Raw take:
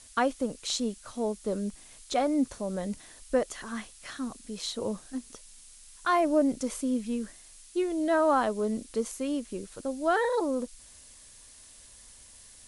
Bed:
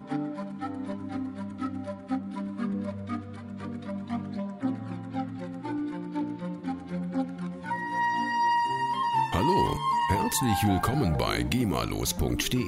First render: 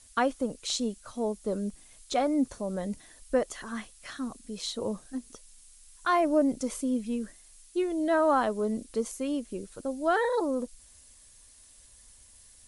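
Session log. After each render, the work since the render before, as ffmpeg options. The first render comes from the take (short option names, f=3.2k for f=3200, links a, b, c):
-af "afftdn=nr=6:nf=-53"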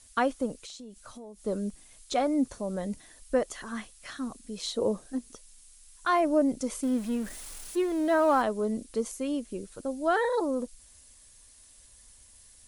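-filter_complex "[0:a]asettb=1/sr,asplit=3[a][b][c];[a]atrim=end=0.544[d];[b]atrim=start=0.54:end=1.43,asetpts=PTS-STARTPTS,afade=t=in:d=0.004:c=qsin,afade=t=out:st=0.886:d=0.004:c=qsin,acompressor=threshold=-41dB:ratio=12:attack=3.2:release=140:knee=1:detection=peak[e];[c]atrim=start=1.426[f];[d][e]acrossfade=d=0.004:c1=hsin:c2=qsin[g];[g][f]acrossfade=d=0.004:c1=qsin:c2=hsin,asettb=1/sr,asplit=3[h][i][j];[h]atrim=end=4.654[k];[i]atrim=start=4.65:end=5.19,asetpts=PTS-STARTPTS,afade=t=in:d=0.004:c=qsin,afade=t=out:st=0.536:d=0.004:c=qsin,equalizer=f=450:w=0.99:g=6.5[l];[j]atrim=start=5.186[m];[k][l]acrossfade=d=0.004:c1=hsin:c2=qsin[n];[n][m]acrossfade=d=0.004:c1=qsin:c2=hsin,asettb=1/sr,asplit=3[o][p][q];[o]atrim=end=6.834[r];[p]atrim=start=6.83:end=8.42,asetpts=PTS-STARTPTS,afade=t=in:d=0.004:c=qsin,afade=t=out:st=1.586:d=0.004:c=qsin,aeval=exprs='val(0)+0.5*0.0119*sgn(val(0))':c=same[s];[q]atrim=start=8.416[t];[r][s]acrossfade=d=0.004:c1=hsin:c2=qsin[u];[u][t]acrossfade=d=0.004:c1=qsin:c2=hsin"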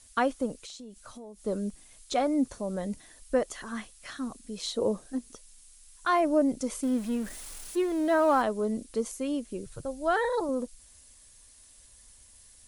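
-filter_complex "[0:a]asettb=1/sr,asplit=3[a][b][c];[a]atrim=end=9.664[d];[b]atrim=start=9.66:end=10.49,asetpts=PTS-STARTPTS,afade=t=in:d=0.004:c=qsin,afade=t=out:st=0.826:d=0.004:c=qsin,lowshelf=f=180:t=q:w=3:g=8[e];[c]atrim=start=10.486[f];[d][e]acrossfade=d=0.004:c1=hsin:c2=qsin[g];[g][f]acrossfade=d=0.004:c1=qsin:c2=hsin"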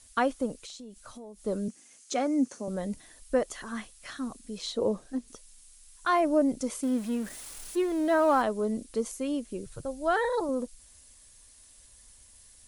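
-filter_complex "[0:a]asettb=1/sr,asplit=3[a][b][c];[a]atrim=end=1.684[d];[b]atrim=start=1.68:end=2.68,asetpts=PTS-STARTPTS,afade=t=in:d=0.004:c=qsin,afade=t=out:st=0.996:d=0.004:c=qsin,highpass=f=160:w=0.5412,highpass=f=160:w=1.3066,equalizer=f=170:t=q:w=4:g=-9,equalizer=f=240:t=q:w=4:g=3,equalizer=f=650:t=q:w=4:g=-5,equalizer=f=1k:t=q:w=4:g=-5,equalizer=f=3.7k:t=q:w=4:g=-6,equalizer=f=6.3k:t=q:w=4:g=6,lowpass=f=9.9k:w=0.5412,lowpass=f=9.9k:w=1.3066[e];[c]atrim=start=2.676[f];[d][e]acrossfade=d=0.004:c1=hsin:c2=qsin[g];[g][f]acrossfade=d=0.004:c1=qsin:c2=hsin,asettb=1/sr,asplit=3[h][i][j];[h]atrim=end=4.584[k];[i]atrim=start=4.58:end=5.28,asetpts=PTS-STARTPTS,afade=t=in:d=0.004:c=qsin,afade=t=out:st=0.696:d=0.004:c=qsin,highshelf=f=10k:g=-11[l];[j]atrim=start=5.276[m];[k][l]acrossfade=d=0.004:c1=hsin:c2=qsin[n];[n][m]acrossfade=d=0.004:c1=qsin:c2=hsin,asettb=1/sr,asplit=3[o][p][q];[o]atrim=end=6.694[r];[p]atrim=start=6.69:end=7.58,asetpts=PTS-STARTPTS,afade=t=in:d=0.004:c=qsin,afade=t=out:st=0.886:d=0.004:c=qsin,highpass=f=72:p=1[s];[q]atrim=start=7.576[t];[r][s]acrossfade=d=0.004:c1=hsin:c2=qsin[u];[u][t]acrossfade=d=0.004:c1=qsin:c2=hsin"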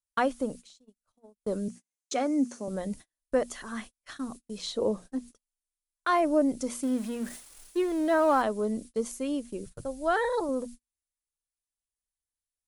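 -af "bandreject=f=60:t=h:w=6,bandreject=f=120:t=h:w=6,bandreject=f=180:t=h:w=6,bandreject=f=240:t=h:w=6,agate=range=-39dB:threshold=-42dB:ratio=16:detection=peak"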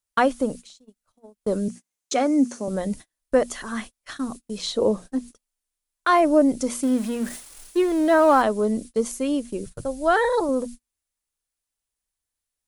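-af "volume=7dB"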